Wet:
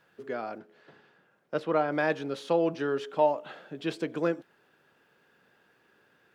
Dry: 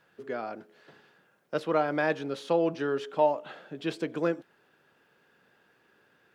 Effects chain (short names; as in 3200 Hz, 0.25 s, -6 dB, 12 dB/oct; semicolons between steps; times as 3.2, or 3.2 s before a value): 0.58–1.92 high shelf 5000 Hz -9.5 dB